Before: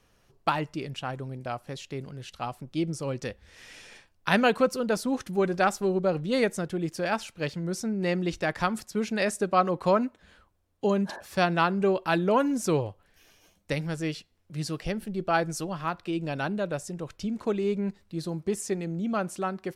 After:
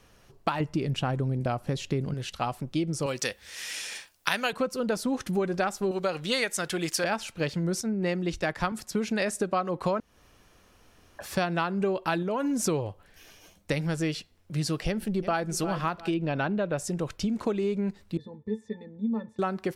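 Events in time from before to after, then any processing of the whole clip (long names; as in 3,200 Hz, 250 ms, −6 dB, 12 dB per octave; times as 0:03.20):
0:00.60–0:02.14: low-shelf EQ 490 Hz +8.5 dB
0:03.06–0:04.53: spectral tilt +3.5 dB per octave
0:05.91–0:07.04: tilt shelving filter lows −9.5 dB, about 720 Hz
0:07.81–0:08.72: multiband upward and downward expander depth 100%
0:10.00–0:11.19: fill with room tone
0:12.22–0:12.66: downward compressor, threshold −28 dBFS
0:14.87–0:15.48: delay throw 350 ms, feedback 30%, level −15.5 dB
0:16.14–0:16.78: low-pass filter 3,300 Hz
0:18.17–0:19.39: resonances in every octave A, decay 0.11 s
whole clip: downward compressor, threshold −31 dBFS; level +6.5 dB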